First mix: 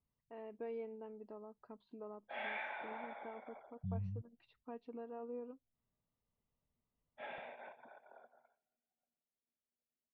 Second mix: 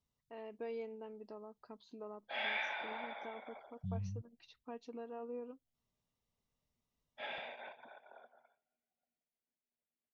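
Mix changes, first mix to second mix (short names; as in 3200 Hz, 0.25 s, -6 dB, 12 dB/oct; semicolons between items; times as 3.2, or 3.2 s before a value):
background: remove air absorption 77 m; master: remove air absorption 460 m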